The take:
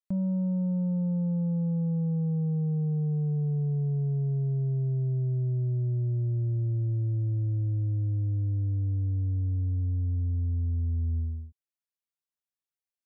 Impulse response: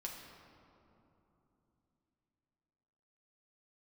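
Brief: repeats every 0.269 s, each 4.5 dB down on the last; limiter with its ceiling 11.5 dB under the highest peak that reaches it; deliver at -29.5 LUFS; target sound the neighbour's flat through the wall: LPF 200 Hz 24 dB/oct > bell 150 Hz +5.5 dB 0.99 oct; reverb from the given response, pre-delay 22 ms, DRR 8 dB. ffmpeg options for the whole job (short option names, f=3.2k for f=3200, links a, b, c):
-filter_complex "[0:a]alimiter=level_in=12.5dB:limit=-24dB:level=0:latency=1,volume=-12.5dB,aecho=1:1:269|538|807|1076|1345|1614|1883|2152|2421:0.596|0.357|0.214|0.129|0.0772|0.0463|0.0278|0.0167|0.01,asplit=2[a][b];[1:a]atrim=start_sample=2205,adelay=22[c];[b][c]afir=irnorm=-1:irlink=0,volume=-6.5dB[d];[a][d]amix=inputs=2:normalize=0,lowpass=f=200:w=0.5412,lowpass=f=200:w=1.3066,equalizer=f=150:t=o:w=0.99:g=5.5,volume=4.5dB"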